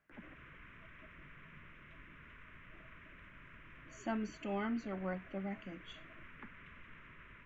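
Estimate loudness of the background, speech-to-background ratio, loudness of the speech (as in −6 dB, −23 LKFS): −56.0 LKFS, 14.5 dB, −41.5 LKFS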